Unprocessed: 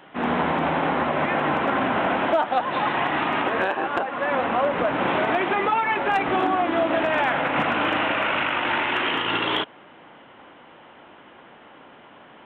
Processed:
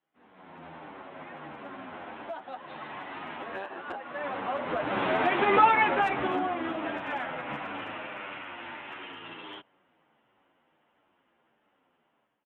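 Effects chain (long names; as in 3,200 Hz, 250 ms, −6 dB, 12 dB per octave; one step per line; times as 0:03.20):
source passing by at 0:05.66, 6 m/s, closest 1.3 metres
automatic gain control gain up to 14 dB
barber-pole flanger 9.3 ms −1.5 Hz
level −6 dB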